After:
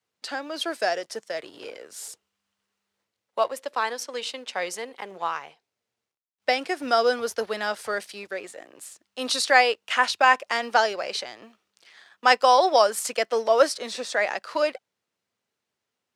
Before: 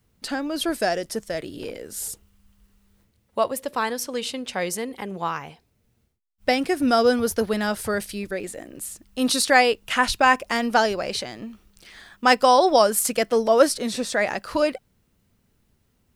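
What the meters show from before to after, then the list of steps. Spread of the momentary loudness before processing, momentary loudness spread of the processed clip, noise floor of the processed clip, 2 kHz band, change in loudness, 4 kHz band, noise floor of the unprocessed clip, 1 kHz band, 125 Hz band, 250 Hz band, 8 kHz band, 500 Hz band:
16 LU, 19 LU, -85 dBFS, -0.5 dB, -1.5 dB, -1.0 dB, -68 dBFS, -1.0 dB, under -15 dB, -12.0 dB, -5.5 dB, -2.5 dB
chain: companding laws mixed up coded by A; high-pass 95 Hz 24 dB/octave; three-band isolator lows -18 dB, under 410 Hz, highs -14 dB, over 7.9 kHz

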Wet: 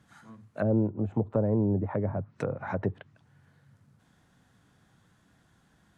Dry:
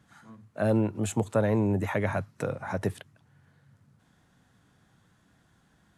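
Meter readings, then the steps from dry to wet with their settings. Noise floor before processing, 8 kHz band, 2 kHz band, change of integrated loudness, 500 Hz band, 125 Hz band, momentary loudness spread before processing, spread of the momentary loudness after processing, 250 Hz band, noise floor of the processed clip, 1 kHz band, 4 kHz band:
-66 dBFS, under -20 dB, -7.5 dB, -1.0 dB, -2.0 dB, 0.0 dB, 9 LU, 9 LU, 0.0 dB, -66 dBFS, -4.0 dB, under -10 dB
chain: low-pass that closes with the level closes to 570 Hz, closed at -25 dBFS

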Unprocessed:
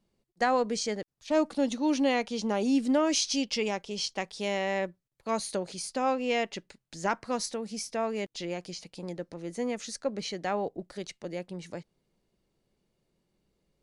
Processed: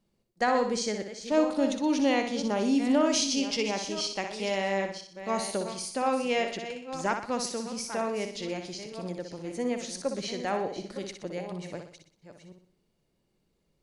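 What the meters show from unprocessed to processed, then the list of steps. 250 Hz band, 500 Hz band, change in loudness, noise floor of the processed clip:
+1.5 dB, +1.5 dB, +1.0 dB, -74 dBFS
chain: chunks repeated in reverse 501 ms, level -11 dB; flutter echo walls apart 10.5 m, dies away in 0.51 s

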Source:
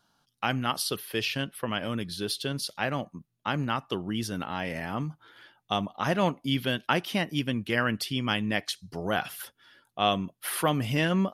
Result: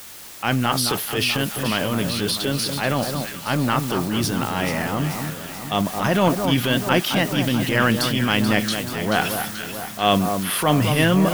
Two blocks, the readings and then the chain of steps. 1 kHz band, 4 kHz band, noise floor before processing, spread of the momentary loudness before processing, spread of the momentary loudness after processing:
+7.5 dB, +8.0 dB, -76 dBFS, 8 LU, 7 LU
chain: word length cut 8-bit, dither triangular; transient shaper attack -7 dB, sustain +5 dB; echo whose repeats swap between lows and highs 217 ms, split 1.4 kHz, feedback 74%, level -6 dB; trim +8.5 dB

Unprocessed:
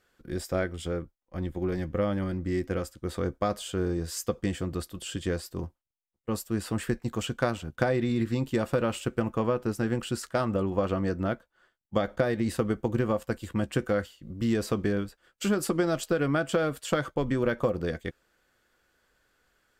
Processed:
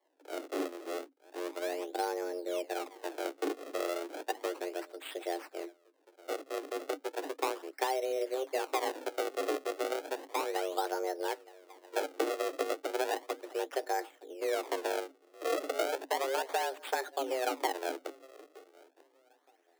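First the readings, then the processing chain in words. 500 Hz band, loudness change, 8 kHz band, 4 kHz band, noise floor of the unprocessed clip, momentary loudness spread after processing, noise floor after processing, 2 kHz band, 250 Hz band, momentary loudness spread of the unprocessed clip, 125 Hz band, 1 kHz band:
-4.5 dB, -6.0 dB, -4.0 dB, -2.0 dB, -78 dBFS, 9 LU, -69 dBFS, -4.0 dB, -13.0 dB, 8 LU, under -40 dB, +1.0 dB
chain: filtered feedback delay 919 ms, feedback 24%, low-pass 1.8 kHz, level -21 dB; decimation with a swept rate 37×, swing 160% 0.34 Hz; frequency shift +260 Hz; trim -6.5 dB

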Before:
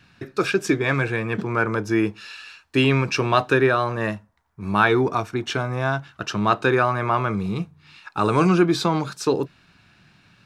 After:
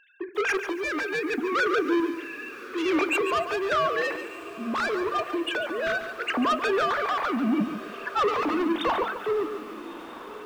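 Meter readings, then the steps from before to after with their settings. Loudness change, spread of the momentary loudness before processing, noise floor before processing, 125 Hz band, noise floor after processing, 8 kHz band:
-5.0 dB, 12 LU, -58 dBFS, -22.5 dB, -41 dBFS, -7.0 dB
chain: formants replaced by sine waves; in parallel at -1 dB: compressor with a negative ratio -25 dBFS, ratio -1; on the sum: saturation -19.5 dBFS, distortion -8 dB; random-step tremolo; on a send: echo that smears into a reverb 1239 ms, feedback 48%, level -14.5 dB; on the sum: FDN reverb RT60 0.3 s, high-frequency decay 0.35×, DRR 14.5 dB; bit-crushed delay 142 ms, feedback 35%, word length 8-bit, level -9.5 dB

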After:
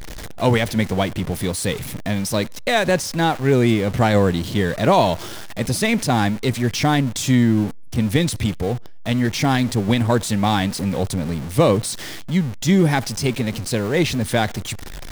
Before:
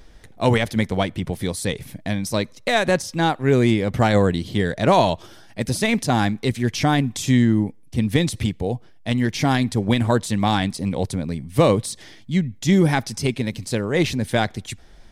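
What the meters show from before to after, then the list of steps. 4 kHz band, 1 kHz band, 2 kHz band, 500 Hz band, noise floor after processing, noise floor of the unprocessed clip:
+2.0 dB, +1.0 dB, +1.0 dB, +1.0 dB, -32 dBFS, -46 dBFS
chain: jump at every zero crossing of -27.5 dBFS

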